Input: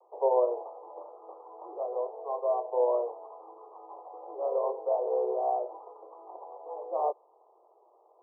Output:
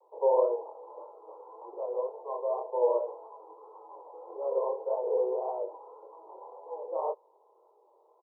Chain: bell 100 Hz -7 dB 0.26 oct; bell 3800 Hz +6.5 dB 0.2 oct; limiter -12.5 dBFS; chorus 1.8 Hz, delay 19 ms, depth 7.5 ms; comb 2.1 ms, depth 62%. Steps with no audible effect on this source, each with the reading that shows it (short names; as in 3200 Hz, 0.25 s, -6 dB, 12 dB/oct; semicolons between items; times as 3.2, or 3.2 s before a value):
bell 100 Hz: input band starts at 320 Hz; bell 3800 Hz: input band ends at 1200 Hz; limiter -12.5 dBFS: input peak -14.0 dBFS